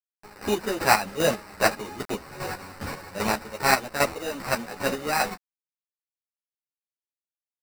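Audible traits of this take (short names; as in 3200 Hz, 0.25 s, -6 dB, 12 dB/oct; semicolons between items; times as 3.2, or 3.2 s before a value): a quantiser's noise floor 6-bit, dither none; chopped level 2.5 Hz, depth 65%, duty 35%; aliases and images of a low sample rate 3300 Hz, jitter 0%; a shimmering, thickened sound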